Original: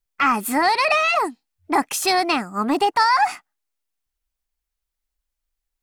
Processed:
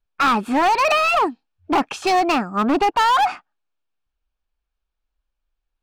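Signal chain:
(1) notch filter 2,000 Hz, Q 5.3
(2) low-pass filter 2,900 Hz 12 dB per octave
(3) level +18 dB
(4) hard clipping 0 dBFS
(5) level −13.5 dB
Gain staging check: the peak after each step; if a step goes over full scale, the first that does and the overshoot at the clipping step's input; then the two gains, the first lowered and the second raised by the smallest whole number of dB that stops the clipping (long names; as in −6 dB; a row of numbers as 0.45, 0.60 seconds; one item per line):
−7.5, −8.5, +9.5, 0.0, −13.5 dBFS
step 3, 9.5 dB
step 3 +8 dB, step 5 −3.5 dB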